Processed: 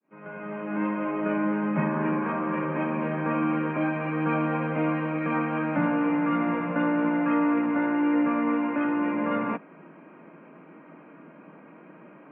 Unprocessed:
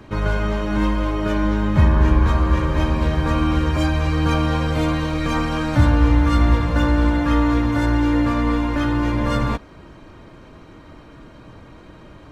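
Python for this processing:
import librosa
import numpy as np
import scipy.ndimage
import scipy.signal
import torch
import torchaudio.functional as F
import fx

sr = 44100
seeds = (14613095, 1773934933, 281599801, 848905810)

y = fx.fade_in_head(x, sr, length_s=1.03)
y = scipy.signal.sosfilt(scipy.signal.cheby1(5, 1.0, [160.0, 2600.0], 'bandpass', fs=sr, output='sos'), y)
y = fx.notch(y, sr, hz=1800.0, q=19.0)
y = y * 10.0 ** (-3.5 / 20.0)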